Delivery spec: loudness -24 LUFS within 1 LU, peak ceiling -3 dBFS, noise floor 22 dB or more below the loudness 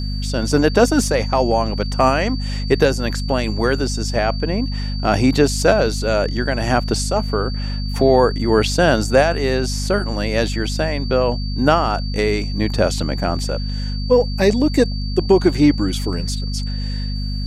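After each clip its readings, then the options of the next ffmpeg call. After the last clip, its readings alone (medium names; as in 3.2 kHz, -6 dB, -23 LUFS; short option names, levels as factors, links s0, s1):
hum 50 Hz; highest harmonic 250 Hz; hum level -21 dBFS; steady tone 4.6 kHz; tone level -32 dBFS; loudness -18.5 LUFS; peak level -1.5 dBFS; loudness target -24.0 LUFS
-> -af "bandreject=f=50:t=h:w=6,bandreject=f=100:t=h:w=6,bandreject=f=150:t=h:w=6,bandreject=f=200:t=h:w=6,bandreject=f=250:t=h:w=6"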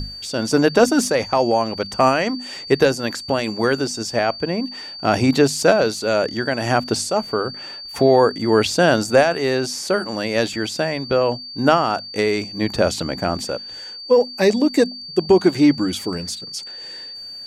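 hum not found; steady tone 4.6 kHz; tone level -32 dBFS
-> -af "bandreject=f=4600:w=30"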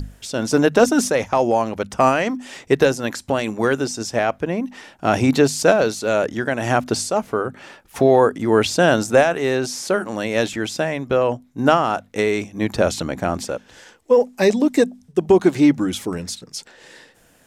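steady tone not found; loudness -19.0 LUFS; peak level -2.0 dBFS; loudness target -24.0 LUFS
-> -af "volume=0.562"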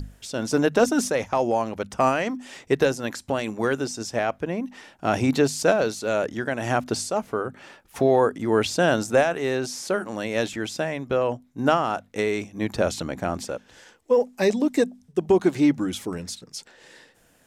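loudness -24.0 LUFS; peak level -7.0 dBFS; noise floor -59 dBFS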